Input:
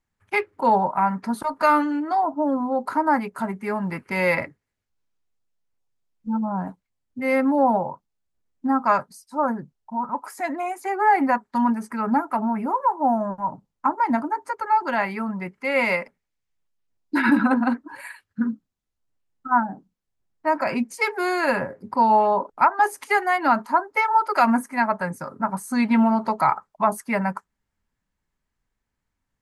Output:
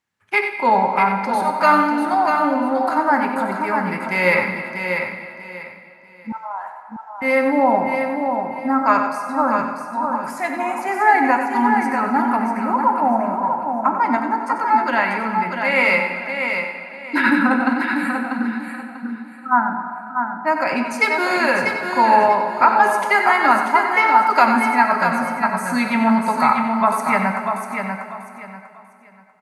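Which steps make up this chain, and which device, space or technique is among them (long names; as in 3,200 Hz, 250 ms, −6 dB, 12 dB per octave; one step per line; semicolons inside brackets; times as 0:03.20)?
PA in a hall (high-pass filter 130 Hz; parametric band 2,700 Hz +6 dB 2.9 octaves; single-tap delay 93 ms −9 dB; convolution reverb RT60 2.5 s, pre-delay 10 ms, DRR 5.5 dB)
0:06.32–0:07.22: high-pass filter 770 Hz 24 dB per octave
repeating echo 642 ms, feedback 26%, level −6 dB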